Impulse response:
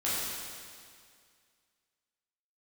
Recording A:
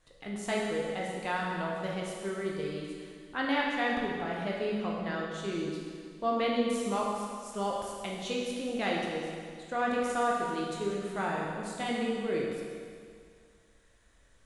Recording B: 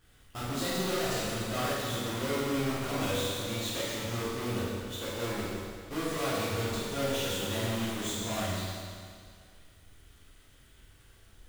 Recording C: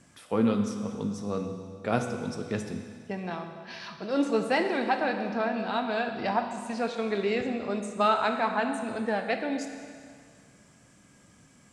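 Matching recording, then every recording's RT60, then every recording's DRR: B; 2.1 s, 2.1 s, 2.1 s; -3.5 dB, -10.0 dB, 5.0 dB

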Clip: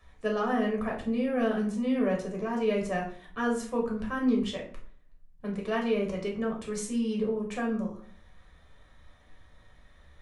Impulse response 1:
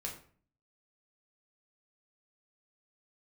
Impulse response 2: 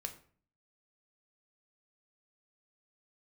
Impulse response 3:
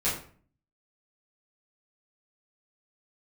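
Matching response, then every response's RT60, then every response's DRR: 1; 0.45 s, 0.45 s, 0.45 s; -1.0 dB, 5.5 dB, -10.5 dB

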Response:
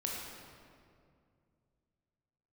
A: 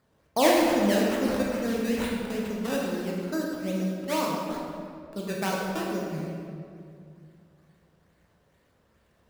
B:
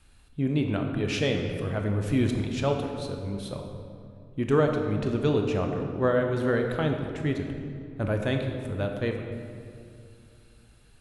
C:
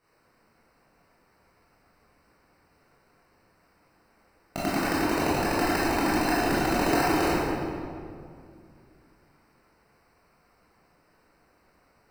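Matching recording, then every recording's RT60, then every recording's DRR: A; 2.3 s, 2.4 s, 2.3 s; -3.0 dB, 3.0 dB, -10.5 dB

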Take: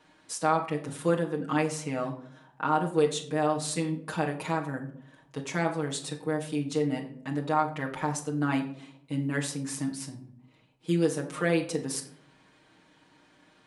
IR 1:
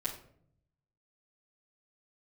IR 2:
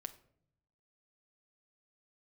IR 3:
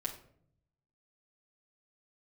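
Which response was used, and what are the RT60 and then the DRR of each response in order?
3; 0.60 s, 0.65 s, 0.60 s; -7.5 dB, 5.5 dB, -3.0 dB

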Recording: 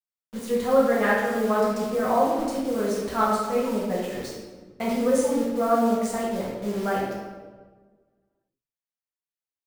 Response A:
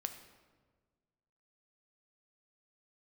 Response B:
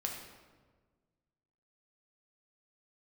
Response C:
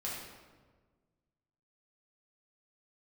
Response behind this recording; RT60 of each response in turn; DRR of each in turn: C; 1.5 s, 1.5 s, 1.4 s; 6.5 dB, 0.0 dB, -7.0 dB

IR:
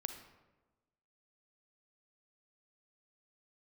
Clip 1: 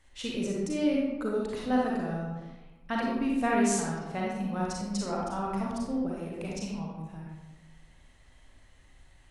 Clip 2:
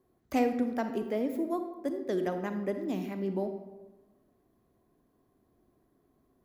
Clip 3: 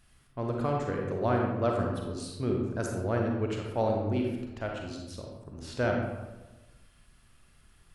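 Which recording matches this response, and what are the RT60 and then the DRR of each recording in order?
2; 1.2 s, 1.2 s, 1.2 s; -4.0 dB, 7.0 dB, 0.0 dB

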